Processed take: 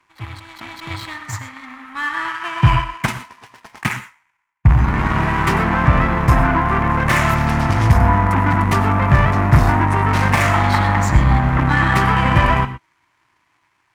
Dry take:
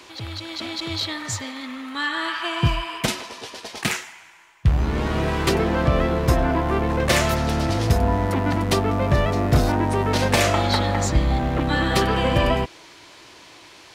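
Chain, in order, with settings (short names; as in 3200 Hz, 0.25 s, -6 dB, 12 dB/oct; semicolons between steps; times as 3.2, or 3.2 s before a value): soft clip -17.5 dBFS, distortion -12 dB; low shelf 410 Hz +6.5 dB; power-law curve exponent 2; graphic EQ 125/500/1000/2000/4000 Hz +4/-9/+11/+9/-6 dB; non-linear reverb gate 0.14 s rising, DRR 12 dB; gain +5.5 dB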